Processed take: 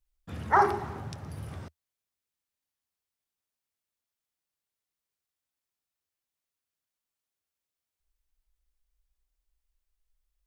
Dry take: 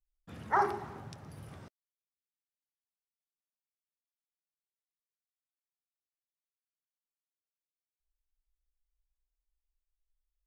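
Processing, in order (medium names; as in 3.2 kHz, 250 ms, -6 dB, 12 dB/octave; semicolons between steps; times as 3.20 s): peaking EQ 79 Hz +8 dB 0.69 oct; trim +6 dB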